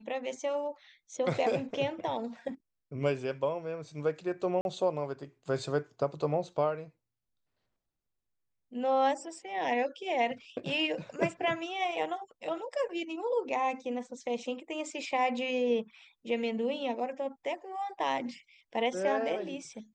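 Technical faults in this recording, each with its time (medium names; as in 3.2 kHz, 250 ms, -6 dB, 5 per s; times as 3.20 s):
4.61–4.65 s: dropout 41 ms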